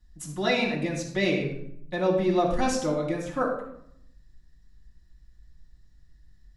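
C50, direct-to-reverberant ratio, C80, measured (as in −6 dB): 5.0 dB, −2.5 dB, 8.0 dB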